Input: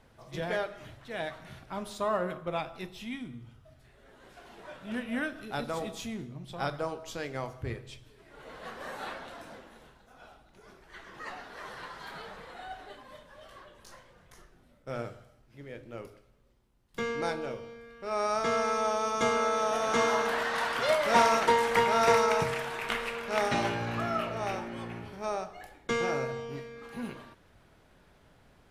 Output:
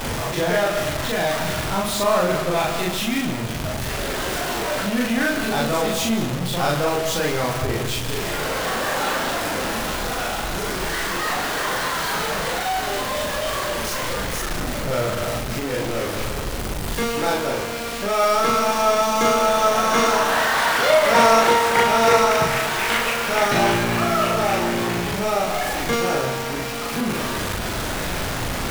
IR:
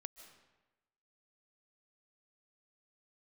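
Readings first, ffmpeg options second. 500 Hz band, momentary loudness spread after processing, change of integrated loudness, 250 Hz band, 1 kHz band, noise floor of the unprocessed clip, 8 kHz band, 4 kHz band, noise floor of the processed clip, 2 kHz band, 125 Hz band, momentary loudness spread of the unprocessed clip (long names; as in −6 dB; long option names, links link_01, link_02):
+11.0 dB, 9 LU, +10.0 dB, +13.5 dB, +10.5 dB, −61 dBFS, +17.0 dB, +15.0 dB, −27 dBFS, +12.5 dB, +14.5 dB, 21 LU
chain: -filter_complex "[0:a]aeval=exprs='val(0)+0.5*0.0447*sgn(val(0))':channel_layout=same,asplit=2[link_01][link_02];[1:a]atrim=start_sample=2205,adelay=40[link_03];[link_02][link_03]afir=irnorm=-1:irlink=0,volume=6dB[link_04];[link_01][link_04]amix=inputs=2:normalize=0,volume=4dB"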